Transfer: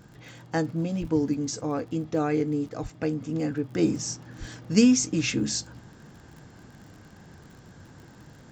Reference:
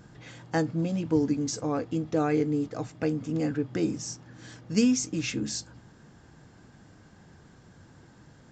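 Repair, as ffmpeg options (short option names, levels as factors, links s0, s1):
-filter_complex "[0:a]adeclick=t=4,asplit=3[s0][s1][s2];[s0]afade=t=out:st=1:d=0.02[s3];[s1]highpass=f=140:w=0.5412,highpass=f=140:w=1.3066,afade=t=in:st=1:d=0.02,afade=t=out:st=1.12:d=0.02[s4];[s2]afade=t=in:st=1.12:d=0.02[s5];[s3][s4][s5]amix=inputs=3:normalize=0,asplit=3[s6][s7][s8];[s6]afade=t=out:st=2.82:d=0.02[s9];[s7]highpass=f=140:w=0.5412,highpass=f=140:w=1.3066,afade=t=in:st=2.82:d=0.02,afade=t=out:st=2.94:d=0.02[s10];[s8]afade=t=in:st=2.94:d=0.02[s11];[s9][s10][s11]amix=inputs=3:normalize=0,asplit=3[s12][s13][s14];[s12]afade=t=out:st=4.39:d=0.02[s15];[s13]highpass=f=140:w=0.5412,highpass=f=140:w=1.3066,afade=t=in:st=4.39:d=0.02,afade=t=out:st=4.51:d=0.02[s16];[s14]afade=t=in:st=4.51:d=0.02[s17];[s15][s16][s17]amix=inputs=3:normalize=0,asetnsamples=n=441:p=0,asendcmd='3.78 volume volume -4.5dB',volume=1"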